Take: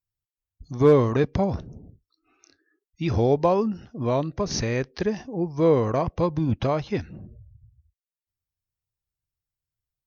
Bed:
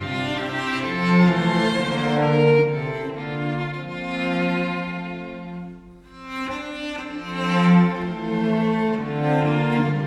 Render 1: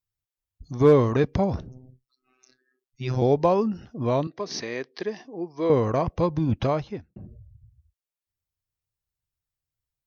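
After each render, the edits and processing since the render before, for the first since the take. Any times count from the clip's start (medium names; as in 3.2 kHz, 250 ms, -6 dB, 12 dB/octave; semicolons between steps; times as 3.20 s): 1.69–3.22 s: robot voice 128 Hz; 4.27–5.70 s: cabinet simulation 370–5300 Hz, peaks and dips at 550 Hz -7 dB, 850 Hz -5 dB, 1.4 kHz -7 dB, 2.6 kHz -4 dB; 6.69–7.16 s: studio fade out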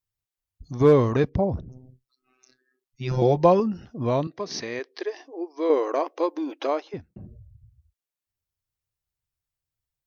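1.29–1.69 s: resonances exaggerated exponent 1.5; 3.11–3.60 s: comb 5.7 ms; 4.79–6.94 s: brick-wall FIR high-pass 270 Hz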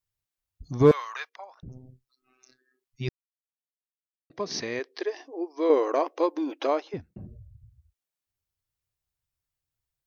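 0.91–1.63 s: high-pass 1.1 kHz 24 dB/octave; 3.09–4.30 s: mute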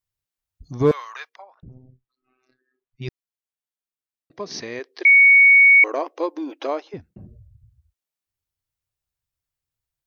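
1.42–3.02 s: distance through air 350 m; 5.05–5.84 s: bleep 2.23 kHz -8 dBFS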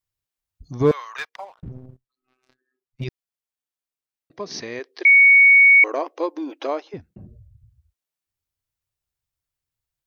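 1.18–3.04 s: waveshaping leveller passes 2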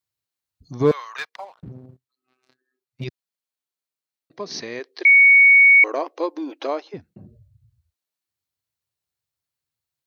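high-pass 110 Hz 12 dB/octave; peaking EQ 4.2 kHz +5.5 dB 0.2 oct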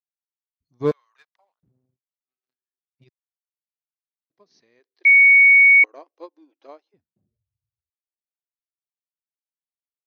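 upward expansion 2.5:1, over -31 dBFS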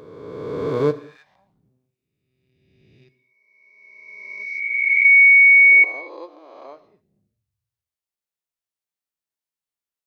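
reverse spectral sustain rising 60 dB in 1.94 s; gated-style reverb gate 270 ms falling, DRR 12 dB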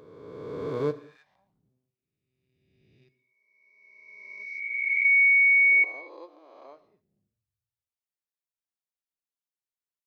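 trim -8.5 dB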